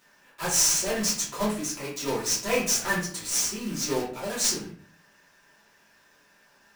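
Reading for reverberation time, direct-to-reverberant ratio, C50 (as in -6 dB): 0.45 s, -8.5 dB, 5.5 dB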